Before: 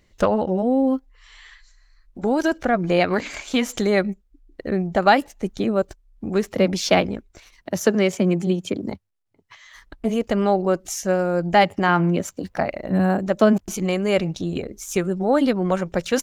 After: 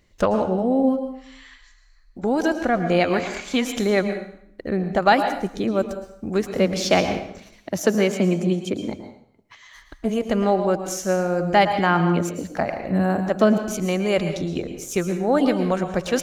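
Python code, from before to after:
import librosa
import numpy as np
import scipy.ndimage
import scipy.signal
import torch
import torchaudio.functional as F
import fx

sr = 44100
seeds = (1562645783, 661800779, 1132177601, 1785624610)

y = fx.high_shelf(x, sr, hz=5800.0, db=6.5, at=(5.79, 6.37))
y = fx.rev_plate(y, sr, seeds[0], rt60_s=0.68, hf_ratio=0.9, predelay_ms=100, drr_db=7.5)
y = F.gain(torch.from_numpy(y), -1.0).numpy()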